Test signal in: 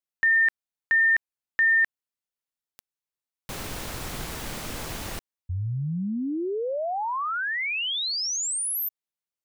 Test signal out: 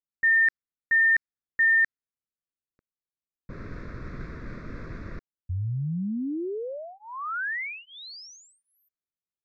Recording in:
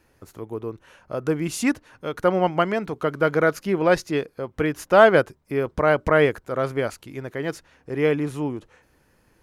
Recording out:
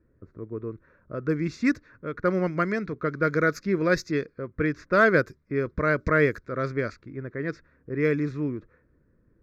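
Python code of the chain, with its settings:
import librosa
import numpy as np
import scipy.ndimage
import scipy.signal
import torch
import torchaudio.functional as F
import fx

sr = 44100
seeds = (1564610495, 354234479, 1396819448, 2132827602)

y = fx.env_lowpass(x, sr, base_hz=780.0, full_db=-16.5)
y = fx.fixed_phaser(y, sr, hz=3000.0, stages=6)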